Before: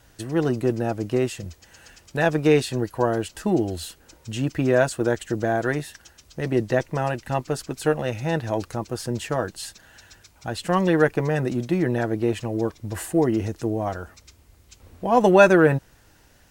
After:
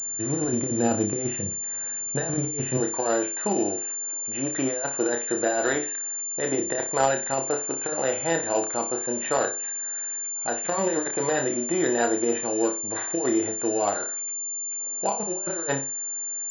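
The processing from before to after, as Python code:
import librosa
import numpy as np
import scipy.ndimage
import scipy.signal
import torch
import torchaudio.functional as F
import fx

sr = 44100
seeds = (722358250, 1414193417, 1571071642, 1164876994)

y = fx.highpass(x, sr, hz=fx.steps((0.0, 130.0), (2.77, 390.0)), slope=12)
y = fx.over_compress(y, sr, threshold_db=-25.0, ratio=-0.5)
y = fx.room_flutter(y, sr, wall_m=5.1, rt60_s=0.31)
y = np.repeat(scipy.signal.resample_poly(y, 1, 8), 8)[:len(y)]
y = fx.pwm(y, sr, carrier_hz=7200.0)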